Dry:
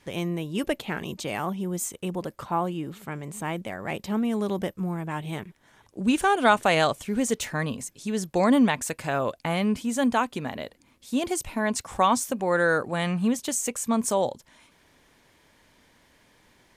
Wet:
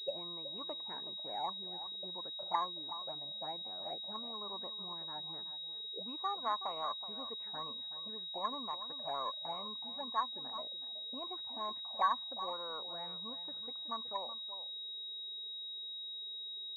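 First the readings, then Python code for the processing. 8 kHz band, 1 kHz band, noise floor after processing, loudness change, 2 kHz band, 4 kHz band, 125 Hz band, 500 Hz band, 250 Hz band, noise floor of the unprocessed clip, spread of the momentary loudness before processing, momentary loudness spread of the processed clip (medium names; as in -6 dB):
under -40 dB, -11.0 dB, -45 dBFS, -13.0 dB, -24.0 dB, +1.0 dB, -29.0 dB, -19.0 dB, -28.0 dB, -61 dBFS, 12 LU, 5 LU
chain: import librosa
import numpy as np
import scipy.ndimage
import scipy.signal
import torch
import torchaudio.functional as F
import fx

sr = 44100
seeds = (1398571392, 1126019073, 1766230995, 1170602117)

p1 = fx.rider(x, sr, range_db=3, speed_s=0.5)
p2 = fx.env_flanger(p1, sr, rest_ms=2.8, full_db=-21.0)
p3 = fx.auto_wah(p2, sr, base_hz=420.0, top_hz=1100.0, q=10.0, full_db=-23.5, direction='up')
p4 = p3 + fx.echo_single(p3, sr, ms=373, db=-12.5, dry=0)
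p5 = fx.pwm(p4, sr, carrier_hz=3800.0)
y = F.gain(torch.from_numpy(p5), 4.0).numpy()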